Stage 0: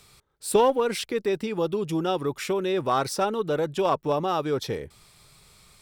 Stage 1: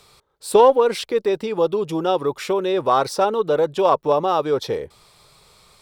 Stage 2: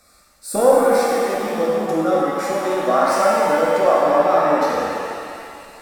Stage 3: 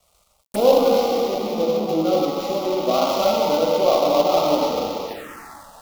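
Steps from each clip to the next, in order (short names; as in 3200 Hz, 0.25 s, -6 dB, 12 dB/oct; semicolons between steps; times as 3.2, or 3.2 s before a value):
graphic EQ 500/1000/4000 Hz +8/+7/+5 dB; gain -1 dB
fixed phaser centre 620 Hz, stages 8; shimmer reverb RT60 2.3 s, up +7 st, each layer -8 dB, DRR -5 dB
switching dead time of 0.14 ms; envelope phaser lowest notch 280 Hz, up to 1700 Hz, full sweep at -21.5 dBFS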